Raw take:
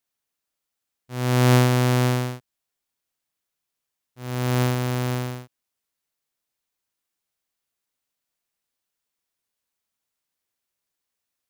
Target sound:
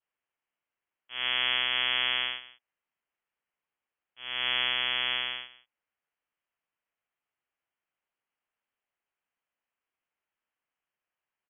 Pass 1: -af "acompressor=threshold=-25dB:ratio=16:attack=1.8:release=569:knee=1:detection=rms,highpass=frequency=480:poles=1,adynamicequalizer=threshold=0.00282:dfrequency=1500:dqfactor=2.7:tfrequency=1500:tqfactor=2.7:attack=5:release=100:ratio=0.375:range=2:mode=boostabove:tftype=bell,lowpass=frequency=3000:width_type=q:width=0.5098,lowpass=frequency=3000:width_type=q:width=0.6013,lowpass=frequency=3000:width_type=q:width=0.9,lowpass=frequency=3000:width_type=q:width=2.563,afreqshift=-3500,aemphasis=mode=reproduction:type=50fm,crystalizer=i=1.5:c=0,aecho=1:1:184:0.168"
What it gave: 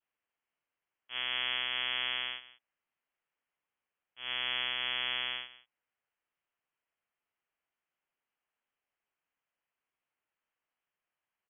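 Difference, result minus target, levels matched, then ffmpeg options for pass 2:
downward compressor: peak gain reduction +6 dB
-af "acompressor=threshold=-18.5dB:ratio=16:attack=1.8:release=569:knee=1:detection=rms,highpass=frequency=480:poles=1,adynamicequalizer=threshold=0.00282:dfrequency=1500:dqfactor=2.7:tfrequency=1500:tqfactor=2.7:attack=5:release=100:ratio=0.375:range=2:mode=boostabove:tftype=bell,lowpass=frequency=3000:width_type=q:width=0.5098,lowpass=frequency=3000:width_type=q:width=0.6013,lowpass=frequency=3000:width_type=q:width=0.9,lowpass=frequency=3000:width_type=q:width=2.563,afreqshift=-3500,aemphasis=mode=reproduction:type=50fm,crystalizer=i=1.5:c=0,aecho=1:1:184:0.168"

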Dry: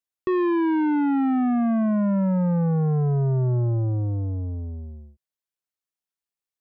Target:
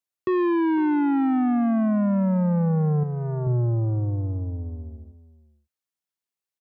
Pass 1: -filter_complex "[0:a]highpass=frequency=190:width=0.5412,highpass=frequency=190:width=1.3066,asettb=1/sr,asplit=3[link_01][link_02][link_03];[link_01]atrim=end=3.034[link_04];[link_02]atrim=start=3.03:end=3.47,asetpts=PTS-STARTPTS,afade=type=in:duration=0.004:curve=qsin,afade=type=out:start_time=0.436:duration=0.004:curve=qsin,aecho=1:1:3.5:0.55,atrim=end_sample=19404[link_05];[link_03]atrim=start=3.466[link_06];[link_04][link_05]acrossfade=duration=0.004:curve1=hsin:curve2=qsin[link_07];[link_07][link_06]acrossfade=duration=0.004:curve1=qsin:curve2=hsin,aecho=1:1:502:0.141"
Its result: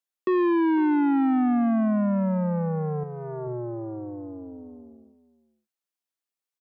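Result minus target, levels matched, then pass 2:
125 Hz band −7.5 dB
-filter_complex "[0:a]highpass=frequency=69:width=0.5412,highpass=frequency=69:width=1.3066,asettb=1/sr,asplit=3[link_01][link_02][link_03];[link_01]atrim=end=3.034[link_04];[link_02]atrim=start=3.03:end=3.47,asetpts=PTS-STARTPTS,afade=type=in:duration=0.004:curve=qsin,afade=type=out:start_time=0.436:duration=0.004:curve=qsin,aecho=1:1:3.5:0.55,atrim=end_sample=19404[link_05];[link_03]atrim=start=3.466[link_06];[link_04][link_05]acrossfade=duration=0.004:curve1=hsin:curve2=qsin[link_07];[link_07][link_06]acrossfade=duration=0.004:curve1=qsin:curve2=hsin,aecho=1:1:502:0.141"

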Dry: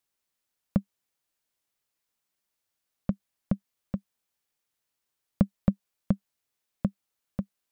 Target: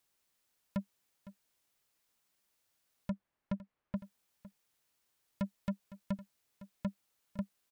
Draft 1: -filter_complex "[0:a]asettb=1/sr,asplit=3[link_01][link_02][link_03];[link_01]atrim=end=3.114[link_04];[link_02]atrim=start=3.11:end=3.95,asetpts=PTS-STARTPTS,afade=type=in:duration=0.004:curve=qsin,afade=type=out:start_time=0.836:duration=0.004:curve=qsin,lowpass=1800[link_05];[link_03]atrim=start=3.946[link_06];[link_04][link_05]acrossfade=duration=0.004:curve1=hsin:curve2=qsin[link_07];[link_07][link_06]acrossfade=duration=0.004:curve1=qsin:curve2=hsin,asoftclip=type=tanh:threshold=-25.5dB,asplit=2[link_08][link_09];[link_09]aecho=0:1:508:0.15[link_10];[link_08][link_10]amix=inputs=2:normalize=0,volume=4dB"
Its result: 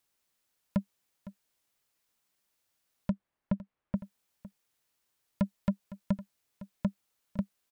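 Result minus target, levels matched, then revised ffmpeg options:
soft clipping: distortion −4 dB
-filter_complex "[0:a]asettb=1/sr,asplit=3[link_01][link_02][link_03];[link_01]atrim=end=3.114[link_04];[link_02]atrim=start=3.11:end=3.95,asetpts=PTS-STARTPTS,afade=type=in:duration=0.004:curve=qsin,afade=type=out:start_time=0.836:duration=0.004:curve=qsin,lowpass=1800[link_05];[link_03]atrim=start=3.946[link_06];[link_04][link_05]acrossfade=duration=0.004:curve1=hsin:curve2=qsin[link_07];[link_07][link_06]acrossfade=duration=0.004:curve1=qsin:curve2=hsin,asoftclip=type=tanh:threshold=-34dB,asplit=2[link_08][link_09];[link_09]aecho=0:1:508:0.15[link_10];[link_08][link_10]amix=inputs=2:normalize=0,volume=4dB"

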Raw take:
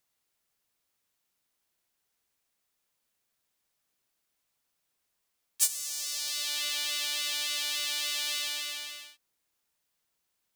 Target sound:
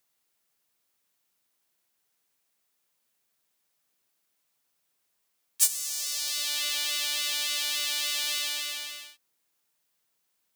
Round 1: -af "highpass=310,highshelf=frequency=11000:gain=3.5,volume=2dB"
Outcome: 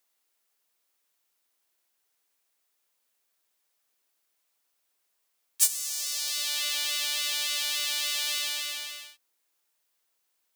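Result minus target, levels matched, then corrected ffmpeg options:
250 Hz band −3.5 dB
-af "highpass=110,highshelf=frequency=11000:gain=3.5,volume=2dB"

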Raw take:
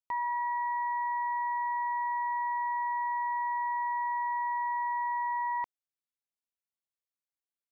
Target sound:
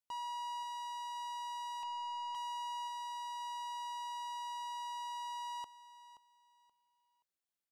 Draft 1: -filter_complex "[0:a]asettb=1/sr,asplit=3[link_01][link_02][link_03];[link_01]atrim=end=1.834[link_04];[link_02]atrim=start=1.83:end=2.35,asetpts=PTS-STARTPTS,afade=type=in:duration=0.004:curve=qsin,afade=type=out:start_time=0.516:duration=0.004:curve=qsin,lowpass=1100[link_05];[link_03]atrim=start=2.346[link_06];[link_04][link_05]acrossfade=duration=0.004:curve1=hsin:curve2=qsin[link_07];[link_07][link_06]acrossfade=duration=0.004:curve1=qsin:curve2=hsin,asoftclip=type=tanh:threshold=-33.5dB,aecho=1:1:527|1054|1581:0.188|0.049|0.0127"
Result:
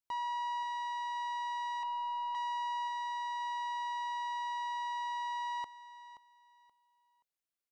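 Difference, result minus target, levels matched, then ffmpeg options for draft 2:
soft clipping: distortion −5 dB
-filter_complex "[0:a]asettb=1/sr,asplit=3[link_01][link_02][link_03];[link_01]atrim=end=1.834[link_04];[link_02]atrim=start=1.83:end=2.35,asetpts=PTS-STARTPTS,afade=type=in:duration=0.004:curve=qsin,afade=type=out:start_time=0.516:duration=0.004:curve=qsin,lowpass=1100[link_05];[link_03]atrim=start=2.346[link_06];[link_04][link_05]acrossfade=duration=0.004:curve1=hsin:curve2=qsin[link_07];[link_07][link_06]acrossfade=duration=0.004:curve1=qsin:curve2=hsin,asoftclip=type=tanh:threshold=-40dB,aecho=1:1:527|1054|1581:0.188|0.049|0.0127"

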